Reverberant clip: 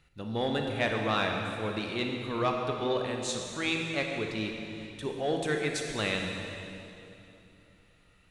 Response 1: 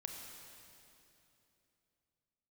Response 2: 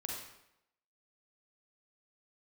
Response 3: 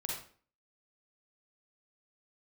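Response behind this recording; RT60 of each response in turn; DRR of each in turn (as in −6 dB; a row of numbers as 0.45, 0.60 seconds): 1; 3.0, 0.85, 0.45 seconds; 1.5, −1.5, −3.0 decibels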